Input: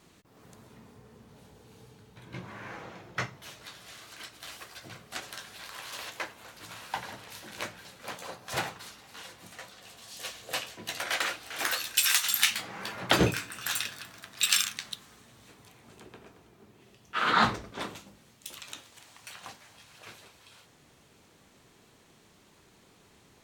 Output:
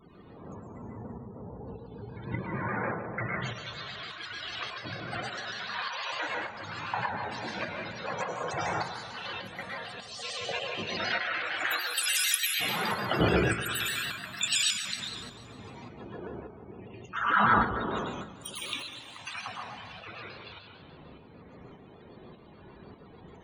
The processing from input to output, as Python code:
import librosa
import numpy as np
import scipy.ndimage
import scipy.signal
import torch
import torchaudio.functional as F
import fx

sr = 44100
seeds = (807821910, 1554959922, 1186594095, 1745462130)

p1 = fx.over_compress(x, sr, threshold_db=-40.0, ratio=-1.0)
p2 = x + F.gain(torch.from_numpy(p1), 2.0).numpy()
p3 = fx.spec_topn(p2, sr, count=32)
p4 = p3 + fx.echo_feedback(p3, sr, ms=235, feedback_pct=42, wet_db=-14, dry=0)
p5 = fx.rev_plate(p4, sr, seeds[0], rt60_s=0.79, hf_ratio=0.95, predelay_ms=90, drr_db=-1.5)
p6 = fx.tremolo_shape(p5, sr, shape='saw_up', hz=1.7, depth_pct=45)
y = fx.vibrato_shape(p6, sr, shape='square', rate_hz=6.7, depth_cents=100.0)